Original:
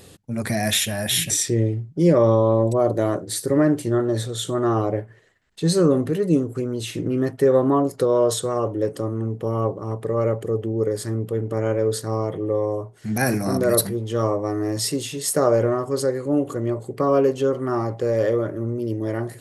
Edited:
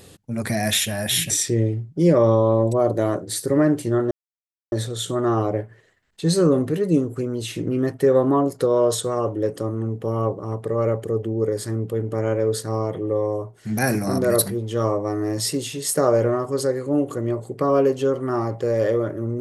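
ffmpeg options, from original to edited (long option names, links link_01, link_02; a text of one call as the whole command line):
ffmpeg -i in.wav -filter_complex "[0:a]asplit=2[link_01][link_02];[link_01]atrim=end=4.11,asetpts=PTS-STARTPTS,afade=type=out:start_time=4.106:duration=0.004:curve=hsin,apad=pad_dur=0.61[link_03];[link_02]atrim=start=4.11,asetpts=PTS-STARTPTS,afade=type=in:duration=0.004:curve=hsin[link_04];[link_03][link_04]concat=n=2:v=0:a=1" out.wav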